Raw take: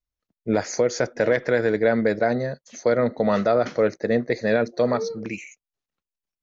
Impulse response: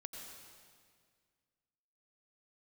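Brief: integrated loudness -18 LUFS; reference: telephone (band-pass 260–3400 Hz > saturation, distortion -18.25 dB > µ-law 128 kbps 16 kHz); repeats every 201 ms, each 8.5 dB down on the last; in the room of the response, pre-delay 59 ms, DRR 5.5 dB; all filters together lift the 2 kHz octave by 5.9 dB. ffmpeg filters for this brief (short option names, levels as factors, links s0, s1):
-filter_complex "[0:a]equalizer=f=2000:t=o:g=8,aecho=1:1:201|402|603|804:0.376|0.143|0.0543|0.0206,asplit=2[s0][s1];[1:a]atrim=start_sample=2205,adelay=59[s2];[s1][s2]afir=irnorm=-1:irlink=0,volume=0.794[s3];[s0][s3]amix=inputs=2:normalize=0,highpass=260,lowpass=3400,asoftclip=threshold=0.299,volume=1.5" -ar 16000 -c:a pcm_mulaw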